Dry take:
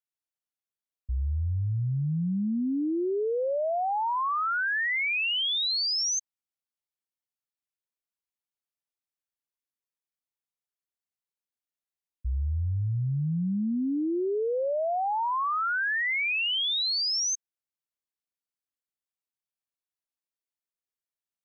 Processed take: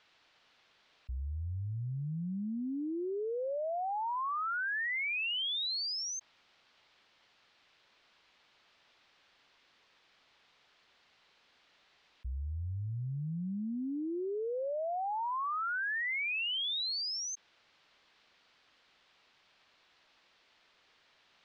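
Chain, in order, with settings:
low-pass filter 4,200 Hz 24 dB per octave
low-shelf EQ 370 Hz −9.5 dB
envelope flattener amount 70%
level −6.5 dB

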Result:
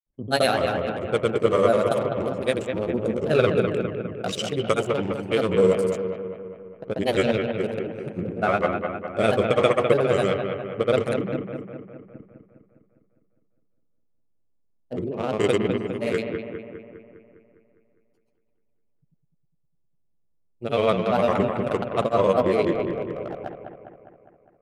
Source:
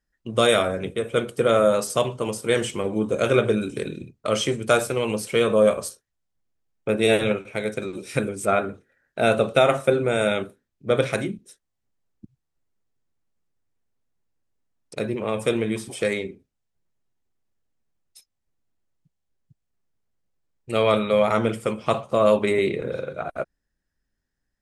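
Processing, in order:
adaptive Wiener filter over 25 samples
granular cloud, pitch spread up and down by 3 semitones
on a send: bucket-brigade delay 203 ms, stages 4,096, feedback 59%, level −6 dB
on the sum: one half of a high-frequency compander decoder only

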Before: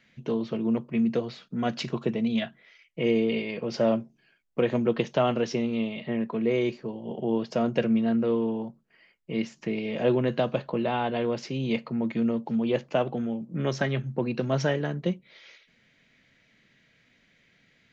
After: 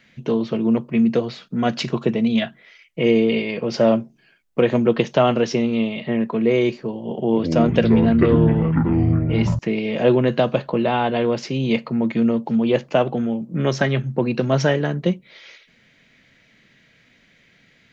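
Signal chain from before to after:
0:07.15–0:09.59: delay with pitch and tempo change per echo 180 ms, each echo −6 semitones, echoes 3
level +7.5 dB

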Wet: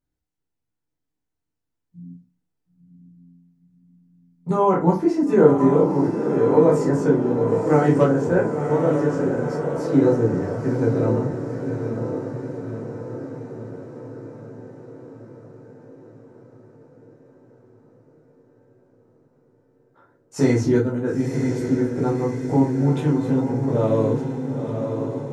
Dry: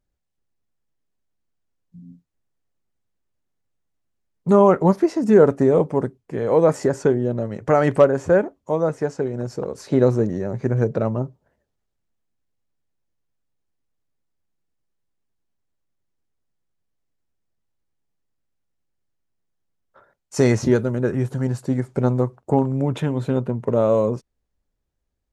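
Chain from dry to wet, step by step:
feedback delay with all-pass diffusion 979 ms, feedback 59%, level −6 dB
convolution reverb RT60 0.35 s, pre-delay 12 ms, DRR −4 dB
level −8.5 dB

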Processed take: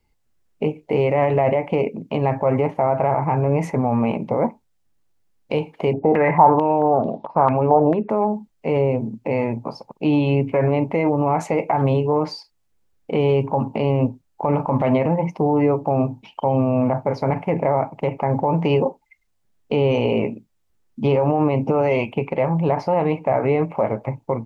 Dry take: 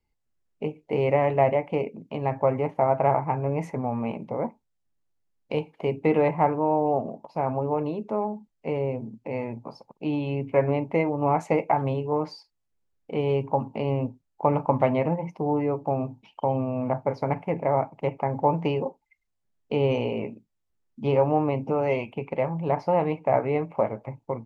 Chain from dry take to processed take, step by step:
boost into a limiter +18.5 dB
0:05.93–0:08.10: low-pass on a step sequencer 4.5 Hz 750–3,700 Hz
level −8.5 dB

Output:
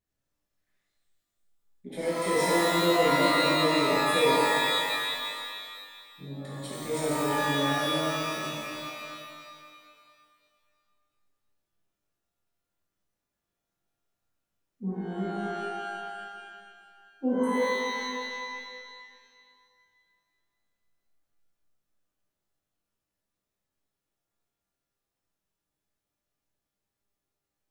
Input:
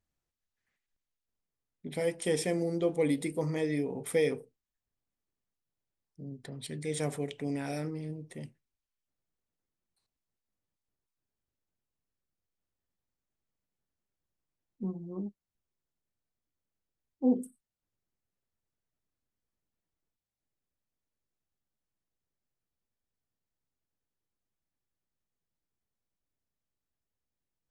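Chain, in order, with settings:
reverb with rising layers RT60 2.1 s, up +12 semitones, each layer −2 dB, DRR −8.5 dB
level −5.5 dB

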